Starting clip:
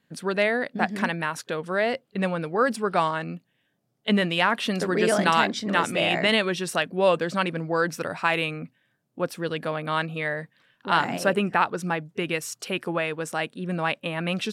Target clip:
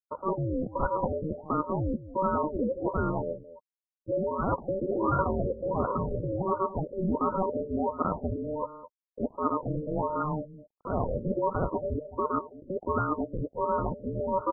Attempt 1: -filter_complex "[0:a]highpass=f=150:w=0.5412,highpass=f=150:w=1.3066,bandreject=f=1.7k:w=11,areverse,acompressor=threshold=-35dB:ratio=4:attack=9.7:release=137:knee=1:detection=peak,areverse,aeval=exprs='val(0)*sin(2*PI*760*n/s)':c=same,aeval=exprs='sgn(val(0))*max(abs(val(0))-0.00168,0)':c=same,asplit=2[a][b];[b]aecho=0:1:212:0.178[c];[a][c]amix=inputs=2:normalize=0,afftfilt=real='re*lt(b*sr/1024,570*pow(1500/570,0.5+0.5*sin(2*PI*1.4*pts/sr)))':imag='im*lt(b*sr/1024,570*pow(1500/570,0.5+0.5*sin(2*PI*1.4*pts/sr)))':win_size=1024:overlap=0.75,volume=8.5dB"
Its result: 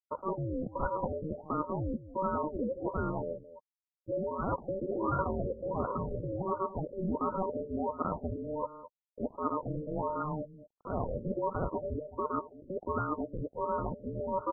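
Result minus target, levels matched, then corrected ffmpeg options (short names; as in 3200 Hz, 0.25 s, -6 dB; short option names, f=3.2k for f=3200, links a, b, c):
compressor: peak gain reduction +4.5 dB
-filter_complex "[0:a]highpass=f=150:w=0.5412,highpass=f=150:w=1.3066,bandreject=f=1.7k:w=11,areverse,acompressor=threshold=-29dB:ratio=4:attack=9.7:release=137:knee=1:detection=peak,areverse,aeval=exprs='val(0)*sin(2*PI*760*n/s)':c=same,aeval=exprs='sgn(val(0))*max(abs(val(0))-0.00168,0)':c=same,asplit=2[a][b];[b]aecho=0:1:212:0.178[c];[a][c]amix=inputs=2:normalize=0,afftfilt=real='re*lt(b*sr/1024,570*pow(1500/570,0.5+0.5*sin(2*PI*1.4*pts/sr)))':imag='im*lt(b*sr/1024,570*pow(1500/570,0.5+0.5*sin(2*PI*1.4*pts/sr)))':win_size=1024:overlap=0.75,volume=8.5dB"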